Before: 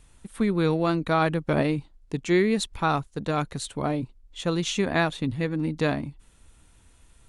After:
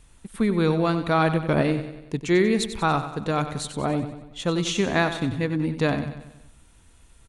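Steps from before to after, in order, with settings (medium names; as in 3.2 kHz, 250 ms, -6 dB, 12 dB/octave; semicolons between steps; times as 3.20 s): feedback delay 94 ms, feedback 52%, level -11 dB; trim +1.5 dB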